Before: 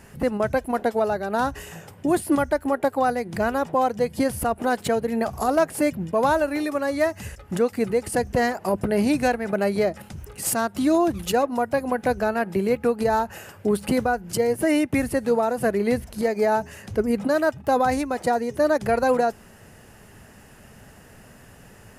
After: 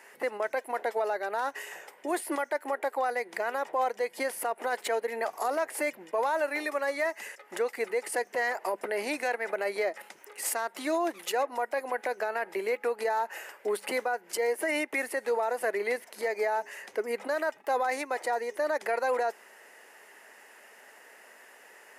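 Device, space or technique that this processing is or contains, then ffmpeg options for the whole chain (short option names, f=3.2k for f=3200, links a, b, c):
laptop speaker: -af "highpass=f=390:w=0.5412,highpass=f=390:w=1.3066,equalizer=f=930:t=o:w=0.25:g=4.5,equalizer=f=2k:t=o:w=0.52:g=9,alimiter=limit=-16dB:level=0:latency=1:release=31,volume=-4.5dB"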